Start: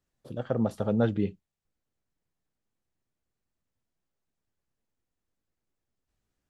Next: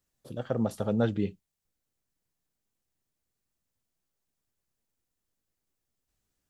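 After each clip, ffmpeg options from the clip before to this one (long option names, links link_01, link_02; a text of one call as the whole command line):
ffmpeg -i in.wav -af "highshelf=frequency=4500:gain=9.5,volume=-1.5dB" out.wav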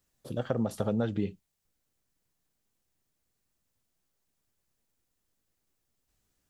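ffmpeg -i in.wav -af "acompressor=threshold=-29dB:ratio=6,volume=4dB" out.wav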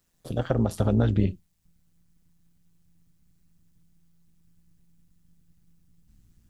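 ffmpeg -i in.wav -af "asubboost=boost=9:cutoff=160,tremolo=f=170:d=0.667,volume=7.5dB" out.wav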